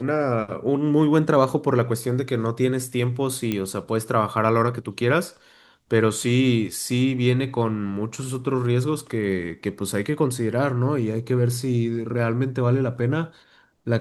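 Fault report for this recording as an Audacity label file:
3.520000	3.520000	pop -12 dBFS

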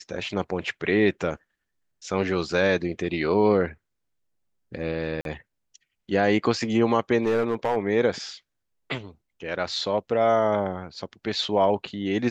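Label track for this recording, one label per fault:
5.210000	5.250000	gap 42 ms
7.220000	7.760000	clipped -18.5 dBFS

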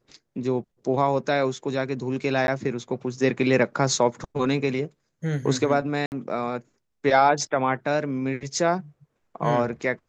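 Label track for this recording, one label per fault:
2.470000	2.480000	gap 11 ms
6.060000	6.120000	gap 59 ms

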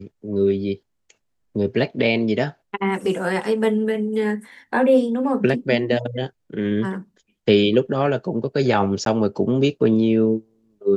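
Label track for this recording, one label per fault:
9.050000	9.060000	gap 12 ms

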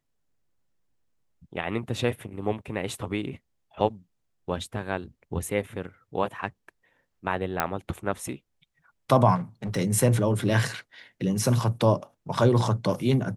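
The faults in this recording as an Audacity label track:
7.600000	7.600000	pop -8 dBFS
9.350000	9.770000	clipped -27.5 dBFS

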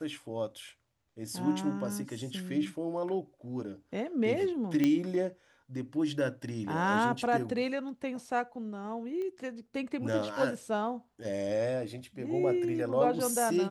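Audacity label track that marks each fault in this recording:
4.840000	4.840000	pop -15 dBFS
9.220000	9.220000	pop -29 dBFS

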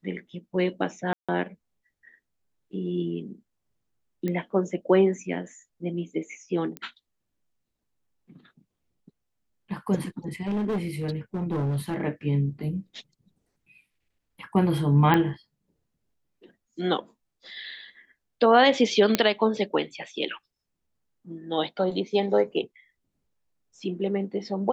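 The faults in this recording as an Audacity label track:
1.130000	1.290000	gap 0.156 s
4.280000	4.280000	pop -18 dBFS
6.770000	6.770000	pop -19 dBFS
10.420000	12.010000	clipped -23.5 dBFS
15.140000	15.140000	pop -10 dBFS
19.150000	19.150000	pop -5 dBFS

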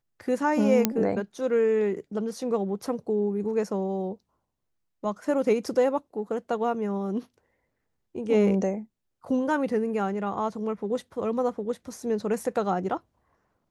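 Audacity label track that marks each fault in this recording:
0.850000	0.850000	pop -5 dBFS

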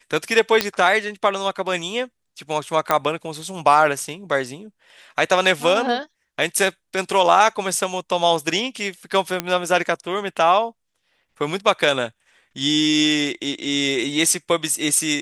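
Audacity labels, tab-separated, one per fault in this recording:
0.610000	0.610000	pop -2 dBFS
2.910000	2.910000	pop -4 dBFS
9.400000	9.400000	pop -6 dBFS

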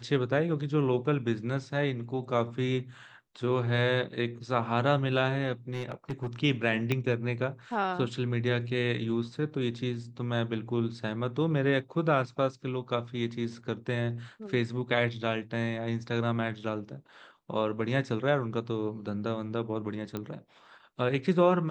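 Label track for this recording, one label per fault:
5.690000	6.280000	clipped -28.5 dBFS
6.920000	6.920000	pop -15 dBFS
20.170000	20.170000	pop -21 dBFS

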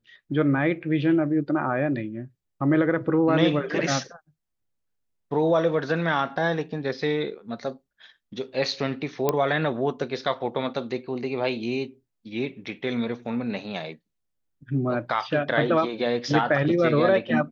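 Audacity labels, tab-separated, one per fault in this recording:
9.290000	9.290000	pop -8 dBFS

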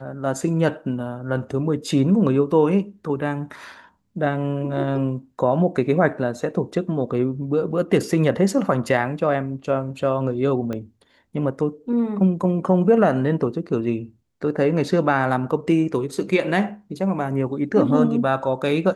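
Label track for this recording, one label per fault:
10.730000	10.730000	pop -17 dBFS

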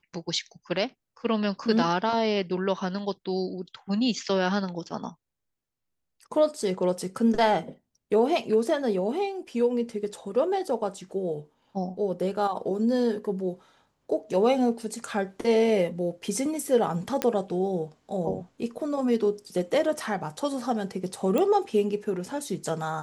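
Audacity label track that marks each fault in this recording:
17.220000	17.220000	pop -10 dBFS
21.380000	21.380000	pop -14 dBFS

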